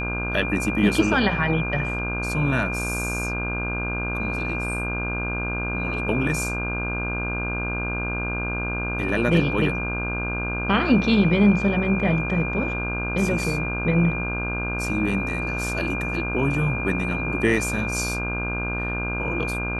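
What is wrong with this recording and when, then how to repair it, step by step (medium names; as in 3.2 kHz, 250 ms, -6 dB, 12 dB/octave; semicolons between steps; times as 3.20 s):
buzz 60 Hz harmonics 27 -29 dBFS
whine 2.4 kHz -28 dBFS
9.09 s: dropout 2.9 ms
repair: de-hum 60 Hz, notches 27; band-stop 2.4 kHz, Q 30; interpolate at 9.09 s, 2.9 ms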